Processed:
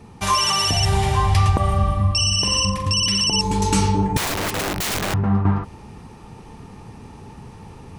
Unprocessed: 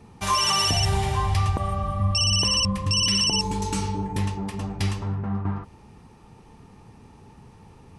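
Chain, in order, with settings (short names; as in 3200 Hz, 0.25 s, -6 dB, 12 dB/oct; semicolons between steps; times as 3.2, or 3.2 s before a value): 1.59–2.93 flutter echo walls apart 7.5 m, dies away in 0.37 s; 4.17–5.14 wrapped overs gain 28 dB; vocal rider within 4 dB 0.5 s; gain +5 dB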